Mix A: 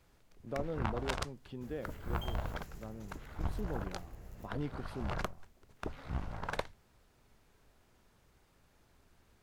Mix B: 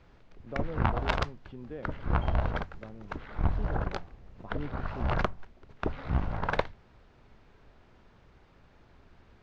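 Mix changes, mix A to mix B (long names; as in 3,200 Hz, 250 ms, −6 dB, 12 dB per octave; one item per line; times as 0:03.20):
first sound +9.5 dB
second sound −3.0 dB
master: add high-frequency loss of the air 200 metres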